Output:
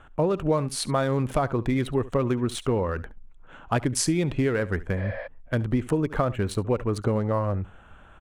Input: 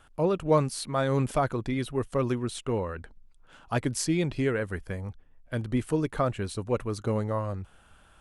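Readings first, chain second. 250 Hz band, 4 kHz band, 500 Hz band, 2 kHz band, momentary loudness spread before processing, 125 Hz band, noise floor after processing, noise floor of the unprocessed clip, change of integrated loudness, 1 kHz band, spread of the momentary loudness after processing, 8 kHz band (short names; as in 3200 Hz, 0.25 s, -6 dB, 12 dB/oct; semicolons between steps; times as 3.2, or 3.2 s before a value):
+3.5 dB, +4.0 dB, +2.5 dB, +3.0 dB, 10 LU, +3.5 dB, -50 dBFS, -58 dBFS, +3.0 dB, +2.0 dB, 6 LU, +4.5 dB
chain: Wiener smoothing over 9 samples; on a send: echo 70 ms -20.5 dB; on the sum: compressor 6:1, threshold -28 dBFS, peak gain reduction 11 dB; spectral repair 5–5.24, 490–5400 Hz before; gain +8 dB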